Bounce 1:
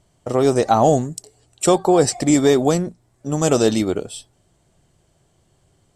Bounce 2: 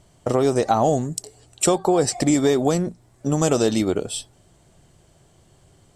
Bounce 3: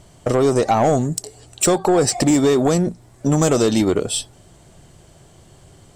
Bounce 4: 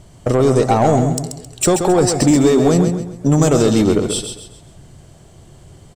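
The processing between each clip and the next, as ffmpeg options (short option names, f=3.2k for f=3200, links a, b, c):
-af "acompressor=threshold=-25dB:ratio=2.5,volume=5.5dB"
-filter_complex "[0:a]asplit=2[a][b];[b]alimiter=limit=-14dB:level=0:latency=1:release=297,volume=3dB[c];[a][c]amix=inputs=2:normalize=0,asoftclip=type=tanh:threshold=-8.5dB"
-filter_complex "[0:a]lowshelf=f=310:g=5.5,asplit=2[a][b];[b]aecho=0:1:133|266|399|532:0.447|0.161|0.0579|0.0208[c];[a][c]amix=inputs=2:normalize=0"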